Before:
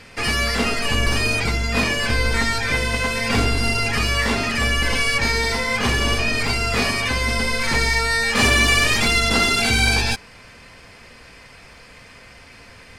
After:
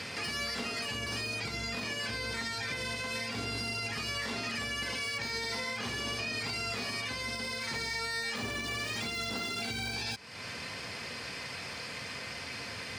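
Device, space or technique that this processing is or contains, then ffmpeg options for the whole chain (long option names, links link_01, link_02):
broadcast voice chain: -af "highpass=frequency=87:width=0.5412,highpass=frequency=87:width=1.3066,deesser=0.5,acompressor=threshold=-40dB:ratio=3,equalizer=frequency=4500:width_type=o:width=1.2:gain=5.5,alimiter=level_in=5.5dB:limit=-24dB:level=0:latency=1:release=96,volume=-5.5dB,volume=3dB"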